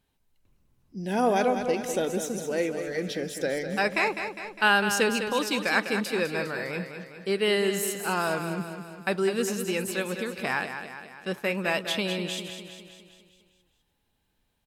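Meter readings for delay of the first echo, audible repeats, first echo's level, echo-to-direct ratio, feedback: 203 ms, 6, −8.5 dB, −7.0 dB, 55%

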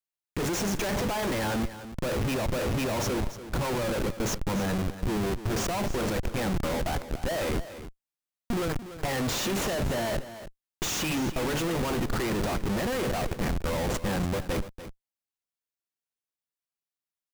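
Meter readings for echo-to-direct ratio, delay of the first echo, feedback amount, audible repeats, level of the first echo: −13.0 dB, 290 ms, repeats not evenly spaced, 1, −13.0 dB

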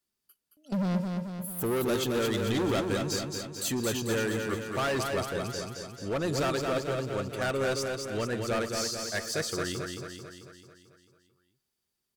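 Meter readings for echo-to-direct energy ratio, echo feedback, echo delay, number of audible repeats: −3.0 dB, 57%, 221 ms, 7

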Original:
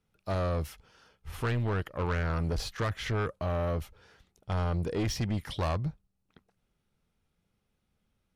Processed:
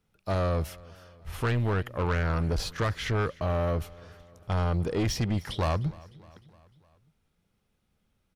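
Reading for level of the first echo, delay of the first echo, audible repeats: −22.0 dB, 304 ms, 3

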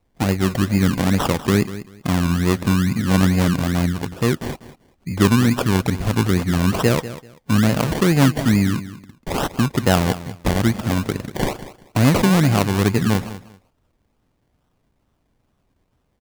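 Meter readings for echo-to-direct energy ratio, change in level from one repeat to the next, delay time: −14.5 dB, −13.5 dB, 194 ms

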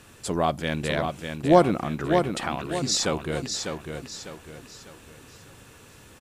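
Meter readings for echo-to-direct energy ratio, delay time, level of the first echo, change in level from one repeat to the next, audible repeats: −5.5 dB, 600 ms, −6.0 dB, −8.5 dB, 4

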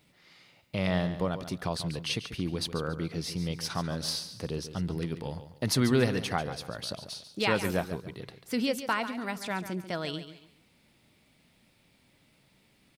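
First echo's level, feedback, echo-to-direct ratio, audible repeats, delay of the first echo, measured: −11.5 dB, 30%, −11.0 dB, 3, 141 ms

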